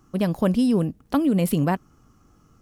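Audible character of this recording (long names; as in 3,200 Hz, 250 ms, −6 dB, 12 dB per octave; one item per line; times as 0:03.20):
background noise floor −59 dBFS
spectral slope −7.0 dB per octave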